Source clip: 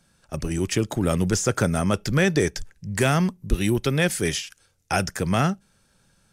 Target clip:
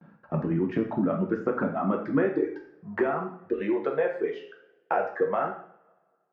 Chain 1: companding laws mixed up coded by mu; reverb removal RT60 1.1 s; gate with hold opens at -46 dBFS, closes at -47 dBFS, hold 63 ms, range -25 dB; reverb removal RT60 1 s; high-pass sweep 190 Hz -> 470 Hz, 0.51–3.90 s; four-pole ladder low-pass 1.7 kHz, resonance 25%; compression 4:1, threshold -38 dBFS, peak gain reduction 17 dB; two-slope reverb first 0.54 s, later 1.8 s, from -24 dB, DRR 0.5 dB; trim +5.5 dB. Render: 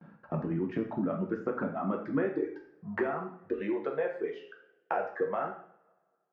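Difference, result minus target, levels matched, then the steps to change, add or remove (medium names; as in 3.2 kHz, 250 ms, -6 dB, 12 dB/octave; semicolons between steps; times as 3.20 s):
compression: peak gain reduction +5.5 dB
change: compression 4:1, threshold -30.5 dBFS, peak gain reduction 11.5 dB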